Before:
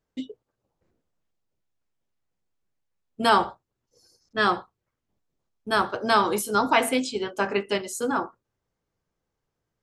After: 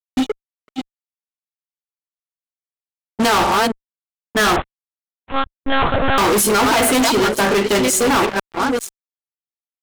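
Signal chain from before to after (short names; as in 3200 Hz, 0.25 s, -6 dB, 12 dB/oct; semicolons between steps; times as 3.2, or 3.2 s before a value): reverse delay 0.494 s, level -11 dB; limiter -13.5 dBFS, peak gain reduction 7 dB; fuzz box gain 36 dB, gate -44 dBFS; 4.56–6.18 monotone LPC vocoder at 8 kHz 270 Hz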